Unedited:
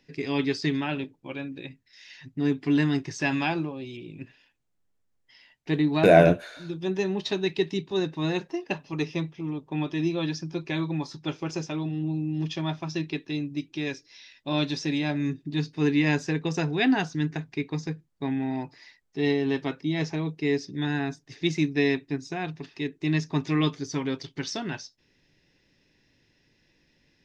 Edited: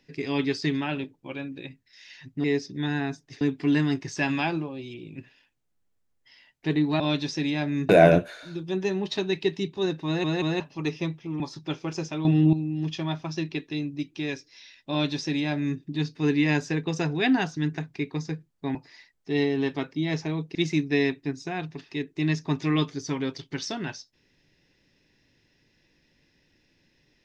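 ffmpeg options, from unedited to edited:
-filter_complex "[0:a]asplit=13[a][b][c][d][e][f][g][h][i][j][k][l][m];[a]atrim=end=2.442[n];[b]atrim=start=20.428:end=21.402[o];[c]atrim=start=2.438:end=6.032[p];[d]atrim=start=14.478:end=15.372[q];[e]atrim=start=6.028:end=8.382[r];[f]atrim=start=8.198:end=8.382[s];[g]atrim=start=8.198:end=8.382[t];[h]atrim=start=8.738:end=9.542[u];[i]atrim=start=10.978:end=11.832[v];[j]atrim=start=11.828:end=12.112,asetpts=PTS-STARTPTS,volume=10.5dB[w];[k]atrim=start=12.108:end=18.332[x];[l]atrim=start=18.628:end=20.432[y];[m]atrim=start=21.398[z];[n][o]acrossfade=d=0.004:c1=hsin:c2=hsin[aa];[aa][p]acrossfade=d=0.004:c1=hsin:c2=hsin[ab];[ab][q]acrossfade=d=0.004:c1=hsin:c2=hsin[ac];[ac][r]acrossfade=d=0.004:c1=hsin:c2=hsin[ad];[ad][s]acrossfade=d=0.004:c1=hsin:c2=hsin[ae];[ae][t]acrossfade=d=0.004:c1=hsin:c2=hsin[af];[af][u]acrossfade=d=0.004:c1=hsin:c2=hsin[ag];[ag][v]acrossfade=d=0.004:c1=hsin:c2=hsin[ah];[ah][w]acrossfade=d=0.004:c1=hsin:c2=hsin[ai];[ai][x]acrossfade=d=0.004:c1=hsin:c2=hsin[aj];[aj][y]acrossfade=d=0.004:c1=hsin:c2=hsin[ak];[ak][z]acrossfade=d=0.004:c1=hsin:c2=hsin"

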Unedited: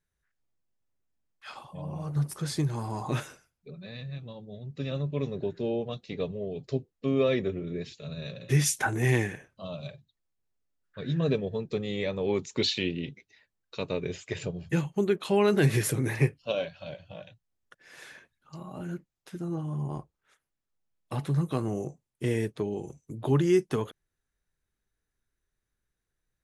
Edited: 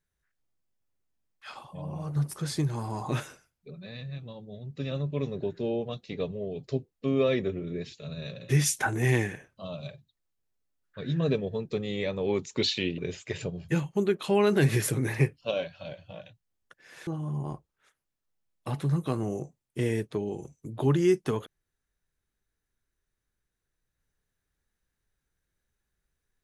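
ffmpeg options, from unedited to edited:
-filter_complex "[0:a]asplit=3[a][b][c];[a]atrim=end=12.982[d];[b]atrim=start=13.988:end=18.082[e];[c]atrim=start=19.518[f];[d][e]acrossfade=d=0.004:c1=hsin:c2=hsin[g];[g][f]acrossfade=d=0.004:c1=hsin:c2=hsin"

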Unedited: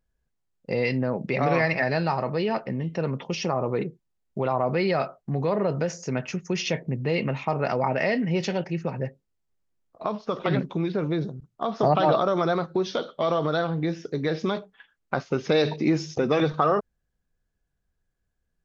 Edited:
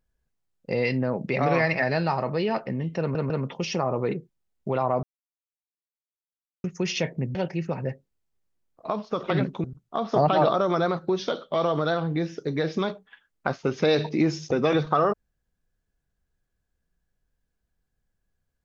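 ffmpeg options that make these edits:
-filter_complex "[0:a]asplit=7[a][b][c][d][e][f][g];[a]atrim=end=3.152[h];[b]atrim=start=2.998:end=3.152[i];[c]atrim=start=2.998:end=4.73,asetpts=PTS-STARTPTS,afade=t=out:st=1.728:d=0.004:c=hsin[j];[d]atrim=start=4.73:end=6.34,asetpts=PTS-STARTPTS,volume=0[k];[e]atrim=start=6.34:end=7.052,asetpts=PTS-STARTPTS,afade=t=in:d=0.004:c=hsin[l];[f]atrim=start=8.508:end=10.802[m];[g]atrim=start=11.308[n];[h][i]acrossfade=d=0.004:c1=hsin:c2=hsin[o];[j][k][l]concat=n=3:v=0:a=1[p];[o][p]acrossfade=d=0.004:c1=hsin:c2=hsin[q];[q][m]acrossfade=d=0.004:c1=hsin:c2=hsin[r];[r][n]acrossfade=d=0.004:c1=hsin:c2=hsin"

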